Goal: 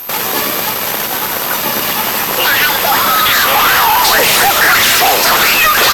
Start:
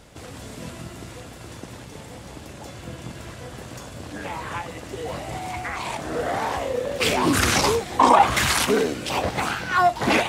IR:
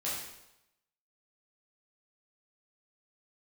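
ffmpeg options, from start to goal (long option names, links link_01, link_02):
-filter_complex "[0:a]asplit=2[link_01][link_02];[link_02]highpass=frequency=720:poles=1,volume=34dB,asoftclip=type=tanh:threshold=-4dB[link_03];[link_01][link_03]amix=inputs=2:normalize=0,lowpass=frequency=3700:poles=1,volume=-6dB,aeval=exprs='sgn(val(0))*max(abs(val(0))-0.0447,0)':channel_layout=same,aeval=exprs='val(0)+0.1*sin(2*PI*7100*n/s)':channel_layout=same,aeval=exprs='sgn(val(0))*max(abs(val(0))-0.0631,0)':channel_layout=same,apsyclip=13.5dB,asplit=2[link_04][link_05];[link_05]asplit=4[link_06][link_07][link_08][link_09];[link_06]adelay=393,afreqshift=-35,volume=-10dB[link_10];[link_07]adelay=786,afreqshift=-70,volume=-18.6dB[link_11];[link_08]adelay=1179,afreqshift=-105,volume=-27.3dB[link_12];[link_09]adelay=1572,afreqshift=-140,volume=-35.9dB[link_13];[link_10][link_11][link_12][link_13]amix=inputs=4:normalize=0[link_14];[link_04][link_14]amix=inputs=2:normalize=0,asetrate=76440,aresample=44100,volume=-6dB"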